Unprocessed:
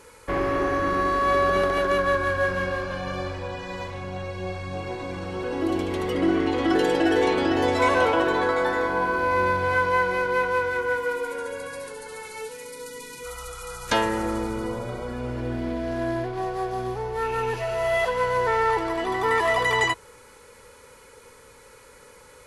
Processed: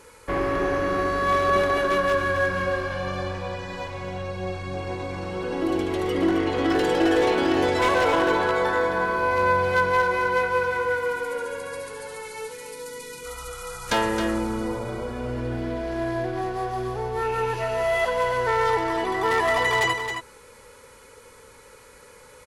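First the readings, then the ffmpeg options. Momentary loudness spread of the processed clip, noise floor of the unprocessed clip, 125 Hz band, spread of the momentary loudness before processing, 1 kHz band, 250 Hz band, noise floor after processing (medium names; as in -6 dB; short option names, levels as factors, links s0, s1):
14 LU, -50 dBFS, +0.5 dB, 14 LU, +0.5 dB, 0.0 dB, -49 dBFS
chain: -af "aeval=exprs='0.188*(abs(mod(val(0)/0.188+3,4)-2)-1)':c=same,aecho=1:1:127|268:0.126|0.422"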